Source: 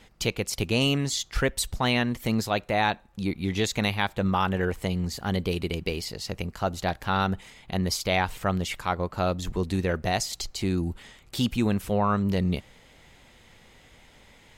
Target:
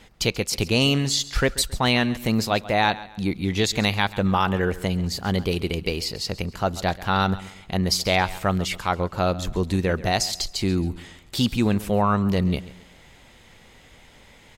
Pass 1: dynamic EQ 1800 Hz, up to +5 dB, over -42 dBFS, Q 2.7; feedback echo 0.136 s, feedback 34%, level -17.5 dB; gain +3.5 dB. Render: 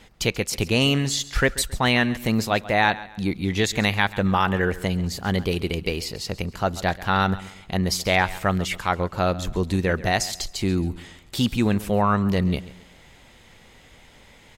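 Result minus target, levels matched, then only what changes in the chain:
2000 Hz band +2.5 dB
change: dynamic EQ 4600 Hz, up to +5 dB, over -42 dBFS, Q 2.7

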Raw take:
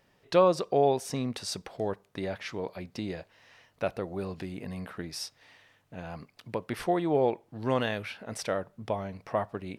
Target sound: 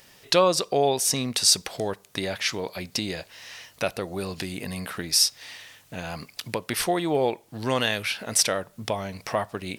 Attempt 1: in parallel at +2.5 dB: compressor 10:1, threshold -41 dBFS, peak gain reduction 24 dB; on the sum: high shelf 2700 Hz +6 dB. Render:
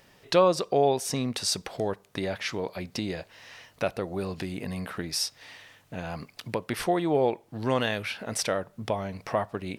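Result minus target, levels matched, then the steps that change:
4000 Hz band -4.5 dB
change: high shelf 2700 Hz +17.5 dB

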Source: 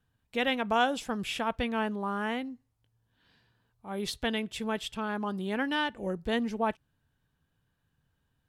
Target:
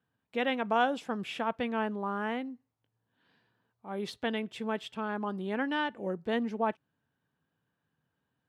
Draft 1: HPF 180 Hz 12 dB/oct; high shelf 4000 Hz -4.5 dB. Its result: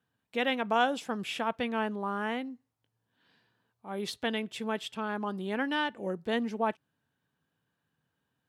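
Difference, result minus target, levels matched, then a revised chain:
8000 Hz band +6.5 dB
HPF 180 Hz 12 dB/oct; high shelf 4000 Hz -14 dB

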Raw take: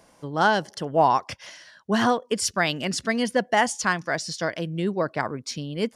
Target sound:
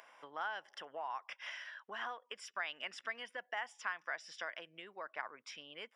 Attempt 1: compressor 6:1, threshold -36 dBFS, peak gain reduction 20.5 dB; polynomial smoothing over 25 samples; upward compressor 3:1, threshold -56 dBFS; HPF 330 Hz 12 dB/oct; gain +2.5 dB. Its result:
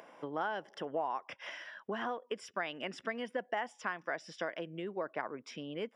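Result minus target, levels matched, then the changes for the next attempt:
250 Hz band +14.5 dB
change: HPF 1100 Hz 12 dB/oct

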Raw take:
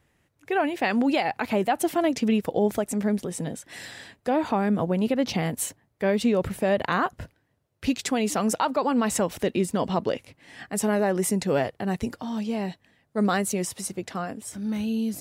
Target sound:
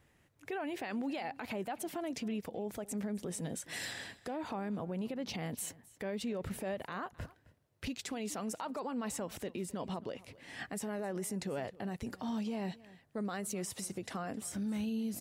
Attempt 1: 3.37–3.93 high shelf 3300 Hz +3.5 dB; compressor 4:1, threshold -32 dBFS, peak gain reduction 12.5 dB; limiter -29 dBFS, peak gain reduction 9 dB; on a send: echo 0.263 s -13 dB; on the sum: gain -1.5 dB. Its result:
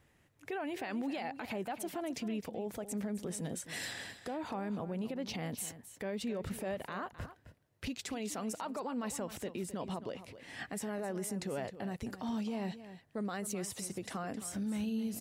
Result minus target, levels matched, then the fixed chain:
echo-to-direct +7.5 dB
3.37–3.93 high shelf 3300 Hz +3.5 dB; compressor 4:1, threshold -32 dBFS, peak gain reduction 12.5 dB; limiter -29 dBFS, peak gain reduction 9 dB; on a send: echo 0.263 s -20.5 dB; on the sum: gain -1.5 dB

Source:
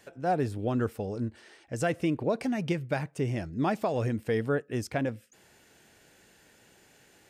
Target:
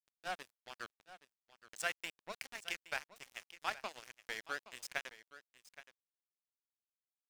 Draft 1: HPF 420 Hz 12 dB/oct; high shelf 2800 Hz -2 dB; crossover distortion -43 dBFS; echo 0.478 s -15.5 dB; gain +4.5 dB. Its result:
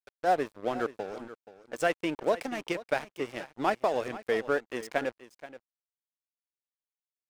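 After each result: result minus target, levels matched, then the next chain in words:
500 Hz band +9.5 dB; echo 0.343 s early
HPF 1600 Hz 12 dB/oct; high shelf 2800 Hz -2 dB; crossover distortion -43 dBFS; echo 0.478 s -15.5 dB; gain +4.5 dB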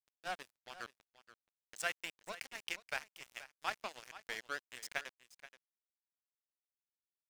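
echo 0.343 s early
HPF 1600 Hz 12 dB/oct; high shelf 2800 Hz -2 dB; crossover distortion -43 dBFS; echo 0.821 s -15.5 dB; gain +4.5 dB

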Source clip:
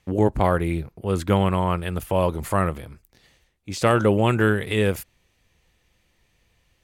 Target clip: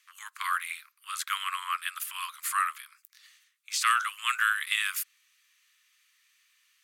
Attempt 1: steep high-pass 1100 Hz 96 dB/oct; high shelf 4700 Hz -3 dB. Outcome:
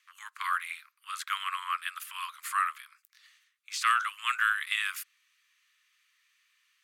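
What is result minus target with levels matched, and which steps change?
8000 Hz band -5.5 dB
change: high shelf 4700 Hz +6 dB

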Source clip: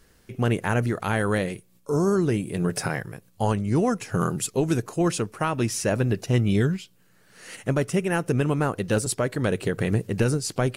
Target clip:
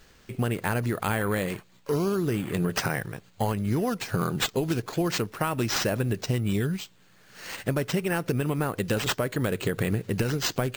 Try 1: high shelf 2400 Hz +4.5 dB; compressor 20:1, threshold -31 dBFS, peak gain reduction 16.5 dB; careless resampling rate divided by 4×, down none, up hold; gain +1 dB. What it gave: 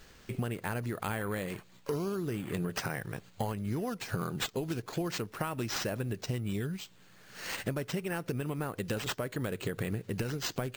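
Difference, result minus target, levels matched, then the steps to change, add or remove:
compressor: peak gain reduction +8 dB
change: compressor 20:1, threshold -22.5 dBFS, peak gain reduction 8.5 dB

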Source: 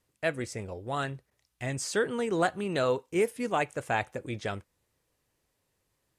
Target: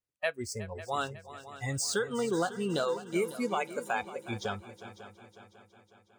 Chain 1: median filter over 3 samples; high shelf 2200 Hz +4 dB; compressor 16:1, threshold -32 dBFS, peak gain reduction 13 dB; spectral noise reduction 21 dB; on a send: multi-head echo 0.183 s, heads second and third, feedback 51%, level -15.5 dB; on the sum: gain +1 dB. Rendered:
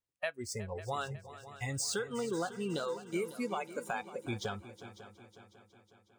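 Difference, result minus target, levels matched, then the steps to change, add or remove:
compressor: peak gain reduction +5.5 dB
change: compressor 16:1, threshold -26 dBFS, peak gain reduction 7.5 dB

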